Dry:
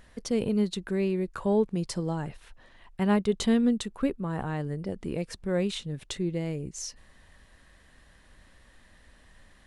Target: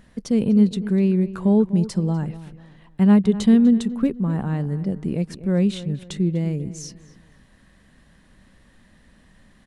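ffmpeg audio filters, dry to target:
-filter_complex "[0:a]equalizer=f=190:t=o:w=1.3:g=11.5,asplit=2[a][b];[b]adelay=247,lowpass=f=2.7k:p=1,volume=-15dB,asplit=2[c][d];[d]adelay=247,lowpass=f=2.7k:p=1,volume=0.35,asplit=2[e][f];[f]adelay=247,lowpass=f=2.7k:p=1,volume=0.35[g];[c][e][g]amix=inputs=3:normalize=0[h];[a][h]amix=inputs=2:normalize=0"

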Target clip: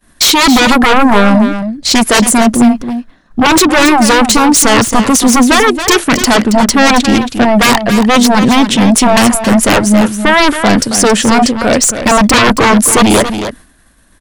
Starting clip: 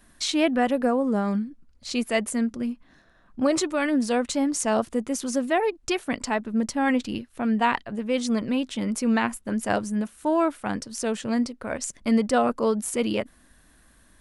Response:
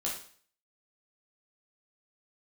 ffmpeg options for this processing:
-af "aeval=exprs='0.376*sin(PI/2*6.31*val(0)/0.376)':c=same,agate=range=-33dB:threshold=-25dB:ratio=3:detection=peak,aecho=1:1:274:0.335,volume=4.5dB"

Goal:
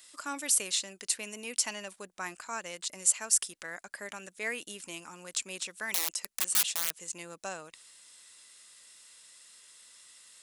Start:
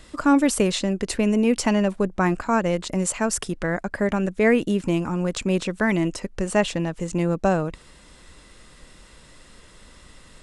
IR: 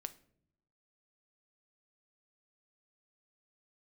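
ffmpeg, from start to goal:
-filter_complex "[0:a]asettb=1/sr,asplit=3[a][b][c];[a]atrim=end=5.944[d];[b]atrim=start=5.94:end=7.02,asetpts=PTS-STARTPTS,afade=t=in:d=0.004:c=qsin,afade=t=out:st=1.076:d=0.004:c=qsin,aeval=exprs='(mod(7.5*val(0)+1,2)-1)/7.5':c=same[e];[c]atrim=start=7.016[f];[d][e]acrossfade=d=0.004:c1=hsin:c2=qsin[g];[g][f]acrossfade=d=0.004:c1=qsin:c2=hsin,aderivative,volume=1.5dB"

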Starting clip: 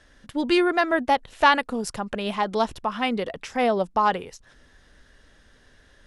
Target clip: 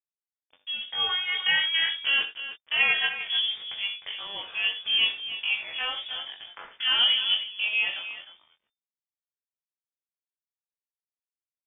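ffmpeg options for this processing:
-filter_complex "[0:a]agate=range=-28dB:threshold=-46dB:ratio=16:detection=peak,lowshelf=f=98:g=-11.5,bandreject=f=650:w=20,asplit=2[a][b];[b]volume=23dB,asoftclip=hard,volume=-23dB,volume=-3.5dB[c];[a][c]amix=inputs=2:normalize=0,flanger=delay=8.9:depth=2.9:regen=-37:speed=1.7:shape=triangular,tremolo=f=1.1:d=0.48,aeval=exprs='sgn(val(0))*max(abs(val(0))-0.00794,0)':c=same,atempo=0.52,asplit=2[d][e];[e]adelay=21,volume=-7dB[f];[d][f]amix=inputs=2:normalize=0,aecho=1:1:61|81|306:0.224|0.158|0.266,lowpass=f=3.1k:t=q:w=0.5098,lowpass=f=3.1k:t=q:w=0.6013,lowpass=f=3.1k:t=q:w=0.9,lowpass=f=3.1k:t=q:w=2.563,afreqshift=-3600"

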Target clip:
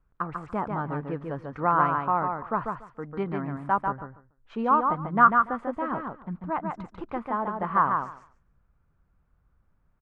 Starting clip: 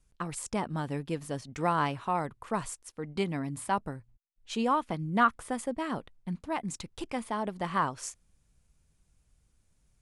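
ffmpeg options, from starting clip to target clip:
-filter_complex "[0:a]lowpass=f=1.3k:t=q:w=2.5,asplit=2[a][b];[b]aecho=0:1:144|288|432:0.596|0.0953|0.0152[c];[a][c]amix=inputs=2:normalize=0"

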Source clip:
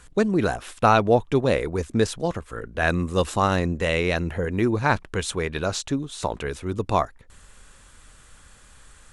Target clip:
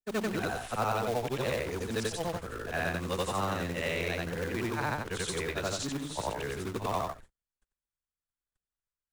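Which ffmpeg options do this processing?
-filter_complex "[0:a]afftfilt=real='re':imag='-im':win_size=8192:overlap=0.75,agate=range=-45dB:threshold=-45dB:ratio=16:detection=peak,acrossover=split=130|640[a][b][c];[a]acompressor=threshold=-43dB:ratio=4[d];[b]acompressor=threshold=-36dB:ratio=4[e];[c]acompressor=threshold=-31dB:ratio=4[f];[d][e][f]amix=inputs=3:normalize=0,acrossover=split=810[g][h];[g]acrusher=bits=2:mode=log:mix=0:aa=0.000001[i];[i][h]amix=inputs=2:normalize=0"

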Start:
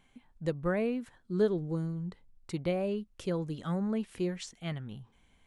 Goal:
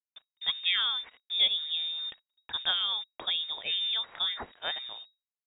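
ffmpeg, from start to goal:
-af "agate=range=-33dB:threshold=-56dB:ratio=3:detection=peak,crystalizer=i=8:c=0,acrusher=bits=7:mix=0:aa=0.5,lowpass=f=3.2k:t=q:w=0.5098,lowpass=f=3.2k:t=q:w=0.6013,lowpass=f=3.2k:t=q:w=0.9,lowpass=f=3.2k:t=q:w=2.563,afreqshift=-3800"

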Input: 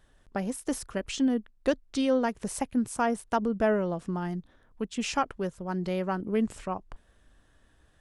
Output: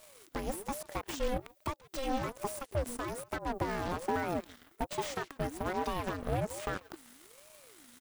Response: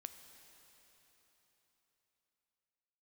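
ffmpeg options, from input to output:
-filter_complex "[0:a]aemphasis=mode=production:type=riaa,acompressor=threshold=-37dB:ratio=16,equalizer=f=500:w=0.7:g=-4.5,aeval=exprs='0.112*sin(PI/2*7.94*val(0)/0.112)':c=same,asplit=2[a][b];[b]adelay=140,highpass=300,lowpass=3.4k,asoftclip=type=hard:threshold=-27.5dB,volume=-12dB[c];[a][c]amix=inputs=2:normalize=0,aeval=exprs='0.126*(cos(1*acos(clip(val(0)/0.126,-1,1)))-cos(1*PI/2))+0.0316*(cos(3*acos(clip(val(0)/0.126,-1,1)))-cos(3*PI/2))+0.0126*(cos(8*acos(clip(val(0)/0.126,-1,1)))-cos(8*PI/2))':c=same,deesser=0.85,aeval=exprs='val(0)*sin(2*PI*430*n/s+430*0.45/1.2*sin(2*PI*1.2*n/s))':c=same,volume=-3.5dB"

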